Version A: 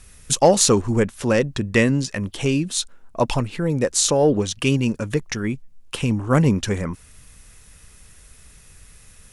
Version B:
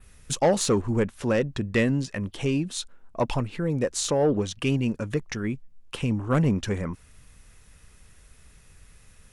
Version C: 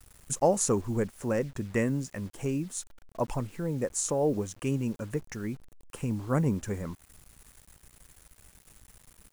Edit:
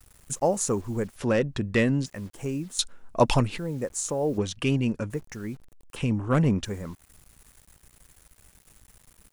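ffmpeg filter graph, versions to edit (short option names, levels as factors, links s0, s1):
-filter_complex "[1:a]asplit=3[s0][s1][s2];[2:a]asplit=5[s3][s4][s5][s6][s7];[s3]atrim=end=1.162[s8];[s0]atrim=start=1.158:end=2.062[s9];[s4]atrim=start=2.058:end=2.792[s10];[0:a]atrim=start=2.788:end=3.582[s11];[s5]atrim=start=3.578:end=4.382[s12];[s1]atrim=start=4.378:end=5.102[s13];[s6]atrim=start=5.098:end=5.962[s14];[s2]atrim=start=5.958:end=6.652[s15];[s7]atrim=start=6.648[s16];[s8][s9]acrossfade=d=0.004:c1=hsin:c2=hsin[s17];[s17][s10]acrossfade=d=0.004:c1=hsin:c2=hsin[s18];[s18][s11]acrossfade=d=0.004:c1=hsin:c2=hsin[s19];[s19][s12]acrossfade=d=0.004:c1=hsin:c2=hsin[s20];[s20][s13]acrossfade=d=0.004:c1=hsin:c2=hsin[s21];[s21][s14]acrossfade=d=0.004:c1=hsin:c2=hsin[s22];[s22][s15]acrossfade=d=0.004:c1=hsin:c2=hsin[s23];[s23][s16]acrossfade=d=0.004:c1=hsin:c2=hsin"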